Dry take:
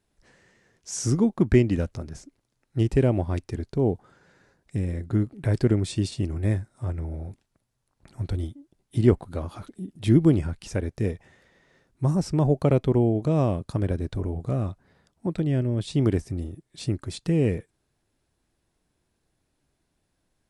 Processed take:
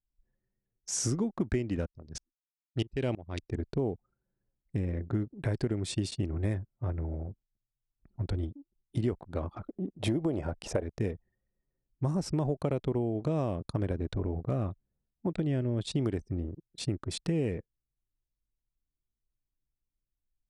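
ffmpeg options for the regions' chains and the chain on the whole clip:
ffmpeg -i in.wav -filter_complex "[0:a]asettb=1/sr,asplit=3[link_01][link_02][link_03];[link_01]atrim=end=1.864[link_04];[link_02]atrim=start=1.86:end=3.5,asetpts=PTS-STARTPTS,afade=type=in:duration=0.004:curve=qsin,afade=type=out:start_time=1.636:duration=0.004:curve=qsin,equalizer=frequency=4000:width_type=o:width=1.8:gain=13,agate=range=-33dB:threshold=-47dB:ratio=3:release=100:detection=peak,aeval=exprs='val(0)*pow(10,-21*if(lt(mod(-3.1*n/s,1),2*abs(-3.1)/1000),1-mod(-3.1*n/s,1)/(2*abs(-3.1)/1000),(mod(-3.1*n/s,1)-2*abs(-3.1)/1000)/(1-2*abs(-3.1)/1000))/20)':channel_layout=same[link_05];[link_03]atrim=start=3.496[link_06];[link_04][link_05]acrossfade=duration=0.004:curve1=hsin:curve2=qsin[link_07];[link_07][link_06]acrossfade=duration=0.004:curve1=qsin:curve2=hsin,asettb=1/sr,asplit=3[link_08][link_09][link_10];[link_08]atrim=end=9.664[link_11];[link_09]atrim=start=9.66:end=10.83,asetpts=PTS-STARTPTS,afade=type=in:duration=0.004:curve=qsin,afade=type=out:start_time=1.166:duration=0.004:curve=qsin,equalizer=frequency=620:width=1:gain=13.5,acompressor=threshold=-16dB:ratio=2:attack=3.2:release=140:knee=1:detection=peak[link_12];[link_10]atrim=start=10.826[link_13];[link_11][link_12]acrossfade=duration=0.004:curve1=hsin:curve2=qsin[link_14];[link_14][link_13]acrossfade=duration=0.004:curve1=qsin:curve2=hsin,anlmdn=0.398,bass=frequency=250:gain=-3,treble=frequency=4000:gain=0,acompressor=threshold=-26dB:ratio=10" out.wav

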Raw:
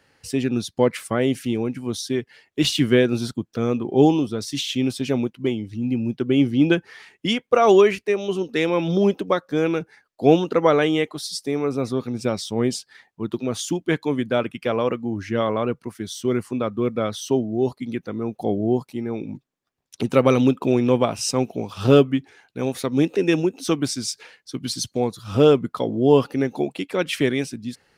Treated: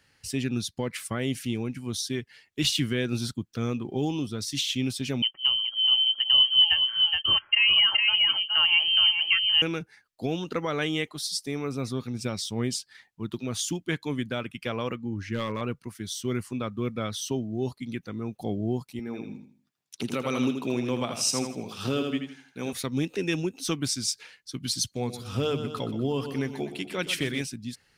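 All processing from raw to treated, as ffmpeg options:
ffmpeg -i in.wav -filter_complex "[0:a]asettb=1/sr,asplit=3[link_01][link_02][link_03];[link_01]atrim=end=5.224[link_04];[link_02]atrim=start=5.22:end=9.62,asetpts=PTS-STARTPTS,afade=type=in:duration=0.004:curve=qsin,afade=type=out:start_time=4.396:duration=0.004:curve=qsin,aecho=1:1:4.1:0.41,atrim=end_sample=194040,aecho=1:1:419:0.501,atrim=end_sample=194040,lowpass=frequency=2800:width_type=q:width=0.5098,lowpass=frequency=2800:width_type=q:width=0.6013,lowpass=frequency=2800:width_type=q:width=0.9,lowpass=frequency=2800:width_type=q:width=2.563,afreqshift=-3300[link_05];[link_03]atrim=start=9.616[link_06];[link_04][link_05]acrossfade=duration=0.004:curve1=hsin:curve2=qsin[link_07];[link_07][link_06]acrossfade=duration=0.004:curve1=qsin:curve2=hsin,asettb=1/sr,asplit=3[link_08][link_09][link_10];[link_08]atrim=end=14.954[link_11];[link_09]atrim=start=14.95:end=15.61,asetpts=PTS-STARTPTS,afade=type=in:duration=0.004:curve=qsin,afade=type=out:start_time=0.656:duration=0.004:curve=qsin,highshelf=frequency=6600:gain=-9,asoftclip=type=hard:threshold=-13.5dB,asuperstop=centerf=710:order=4:qfactor=3.6[link_12];[link_10]atrim=start=15.606[link_13];[link_11][link_12]acrossfade=duration=0.004:curve1=hsin:curve2=qsin[link_14];[link_14][link_13]acrossfade=duration=0.004:curve1=qsin:curve2=hsin,asettb=1/sr,asplit=3[link_15][link_16][link_17];[link_15]atrim=end=18.994[link_18];[link_16]atrim=start=18.99:end=22.73,asetpts=PTS-STARTPTS,afade=type=in:duration=0.004:curve=qsin,afade=type=out:start_time=3.736:duration=0.004:curve=qsin,highpass=180,aecho=1:1:81|162|243|324:0.447|0.147|0.0486|0.0161,atrim=end_sample=164934[link_19];[link_17]atrim=start=22.726[link_20];[link_18][link_19]acrossfade=duration=0.004:curve1=hsin:curve2=qsin[link_21];[link_21][link_20]acrossfade=duration=0.004:curve1=qsin:curve2=hsin,asettb=1/sr,asplit=3[link_22][link_23][link_24];[link_22]atrim=end=24.934[link_25];[link_23]atrim=start=24.93:end=27.42,asetpts=PTS-STARTPTS,afade=type=in:duration=0.004:curve=qsin,afade=type=out:start_time=2.486:duration=0.004:curve=qsin,bandreject=frequency=50:width_type=h:width=6,bandreject=frequency=100:width_type=h:width=6,bandreject=frequency=150:width_type=h:width=6,bandreject=frequency=200:width_type=h:width=6,bandreject=frequency=250:width_type=h:width=6,bandreject=frequency=300:width_type=h:width=6,bandreject=frequency=350:width_type=h:width=6,aecho=1:1:123|246|369|492|615:0.251|0.128|0.0653|0.0333|0.017,atrim=end_sample=109809[link_26];[link_24]atrim=start=27.416[link_27];[link_25][link_26]acrossfade=duration=0.004:curve1=hsin:curve2=qsin[link_28];[link_28][link_27]acrossfade=duration=0.004:curve1=qsin:curve2=hsin,alimiter=limit=-10dB:level=0:latency=1:release=192,equalizer=frequency=530:width_type=o:width=2.7:gain=-10.5" out.wav

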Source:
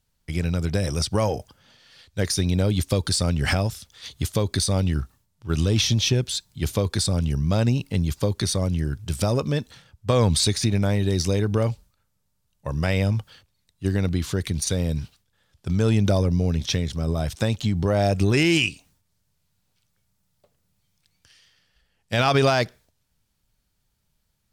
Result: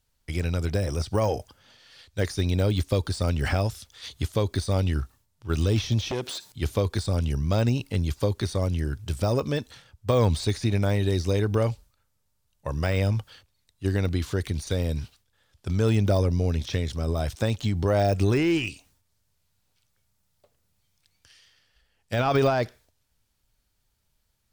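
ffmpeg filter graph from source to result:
ffmpeg -i in.wav -filter_complex "[0:a]asettb=1/sr,asplit=3[link_01][link_02][link_03];[link_01]atrim=end=6.114[link_04];[link_02]atrim=start=6.11:end=6.52,asetpts=PTS-STARTPTS,afade=type=in:duration=0.004:curve=qsin,afade=type=out:start_time=0.406:duration=0.004:curve=qsin,acompressor=threshold=-33dB:ratio=3:attack=3.2:release=140:knee=1:detection=peak,aeval=exprs='0.133*sin(PI/2*3.16*val(0)/0.133)':channel_layout=same,highpass=240[link_05];[link_03]atrim=start=6.516[link_06];[link_04][link_05]acrossfade=duration=0.004:curve1=hsin:curve2=qsin[link_07];[link_07][link_06]acrossfade=duration=0.004:curve1=qsin:curve2=hsin,deesser=0.85,equalizer=frequency=170:width=1.9:gain=-7" out.wav

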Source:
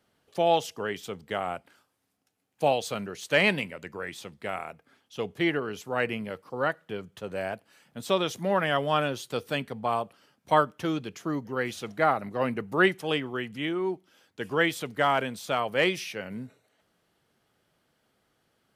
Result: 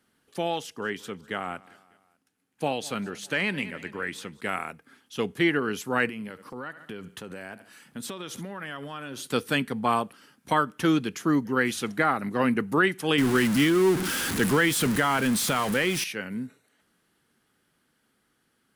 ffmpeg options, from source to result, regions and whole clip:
ffmpeg -i in.wav -filter_complex "[0:a]asettb=1/sr,asplit=3[link_01][link_02][link_03];[link_01]atrim=end=0.624[link_04];[link_02]atrim=start=0.62:end=4.41,asetpts=PTS-STARTPTS,afade=type=in:duration=0.004:curve=qsin,afade=type=out:start_time=3.786:duration=0.004:curve=qsin,highshelf=frequency=6300:gain=-6,aecho=1:1:200|400|600:0.075|0.0382|0.0195,atrim=end_sample=167139[link_05];[link_03]atrim=start=4.406[link_06];[link_04][link_05]acrossfade=duration=0.004:curve1=hsin:curve2=qsin[link_07];[link_07][link_06]acrossfade=duration=0.004:curve1=qsin:curve2=hsin,asettb=1/sr,asplit=3[link_08][link_09][link_10];[link_08]atrim=end=6.094[link_11];[link_09]atrim=start=6.09:end=9.27,asetpts=PTS-STARTPTS,afade=type=in:duration=0.004:curve=qsin,afade=type=out:start_time=3.176:duration=0.004:curve=qsin,aecho=1:1:71|142|213:0.0841|0.0303|0.0109,atrim=end_sample=140238,acompressor=threshold=-41dB:ratio=4:attack=3.2:release=140:knee=1:detection=peak[link_12];[link_10]atrim=start=9.266[link_13];[link_11][link_12]acrossfade=duration=0.004:curve1=hsin:curve2=qsin[link_14];[link_14][link_13]acrossfade=duration=0.004:curve1=qsin:curve2=hsin,asettb=1/sr,asplit=3[link_15][link_16][link_17];[link_15]atrim=end=13.184[link_18];[link_16]atrim=start=13.18:end=16.04,asetpts=PTS-STARTPTS,afade=type=in:duration=0.004:curve=qsin,afade=type=out:start_time=2.856:duration=0.004:curve=qsin,aeval=exprs='val(0)+0.5*0.0316*sgn(val(0))':channel_layout=same,equalizer=frequency=130:width_type=o:width=1.6:gain=4.5[link_19];[link_17]atrim=start=16.036[link_20];[link_18][link_19]acrossfade=duration=0.004:curve1=hsin:curve2=qsin[link_21];[link_21][link_20]acrossfade=duration=0.004:curve1=qsin:curve2=hsin,equalizer=frequency=100:width_type=o:width=0.67:gain=-4,equalizer=frequency=250:width_type=o:width=0.67:gain=5,equalizer=frequency=630:width_type=o:width=0.67:gain=-7,equalizer=frequency=1600:width_type=o:width=0.67:gain=4,equalizer=frequency=10000:width_type=o:width=0.67:gain=7,alimiter=limit=-16.5dB:level=0:latency=1:release=199,dynaudnorm=framelen=640:gausssize=13:maxgain=5.5dB" out.wav

